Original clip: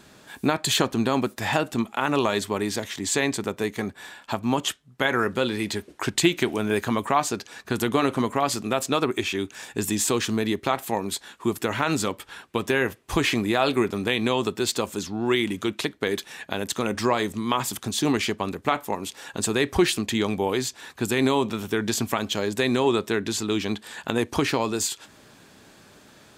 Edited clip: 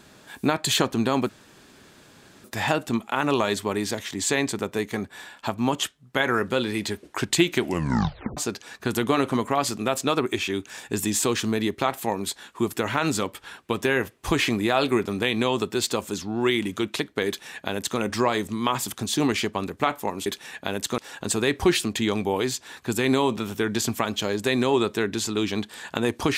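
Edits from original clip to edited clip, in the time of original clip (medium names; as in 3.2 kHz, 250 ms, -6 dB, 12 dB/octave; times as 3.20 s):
1.29 s: insert room tone 1.15 s
6.47 s: tape stop 0.75 s
16.12–16.84 s: copy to 19.11 s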